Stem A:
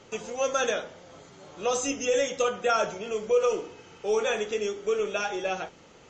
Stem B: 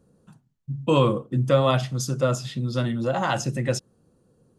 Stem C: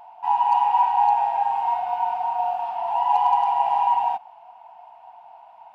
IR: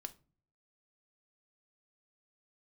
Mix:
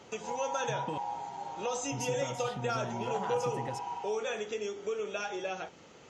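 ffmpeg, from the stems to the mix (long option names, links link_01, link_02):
-filter_complex "[0:a]highpass=76,acompressor=threshold=-35dB:ratio=2,volume=-1.5dB[link_01];[1:a]acompressor=threshold=-26dB:ratio=6,volume=-10dB,asplit=3[link_02][link_03][link_04];[link_02]atrim=end=0.98,asetpts=PTS-STARTPTS,afade=type=out:start_time=0.976:duration=0.004:curve=hsin[link_05];[link_03]atrim=start=0.98:end=1.92,asetpts=PTS-STARTPTS,volume=0[link_06];[link_04]atrim=start=1.92,asetpts=PTS-STARTPTS,afade=type=in:duration=0.004:curve=hsin[link_07];[link_05][link_06][link_07]concat=n=3:v=0:a=1[link_08];[2:a]volume=-19dB[link_09];[link_01][link_08][link_09]amix=inputs=3:normalize=0"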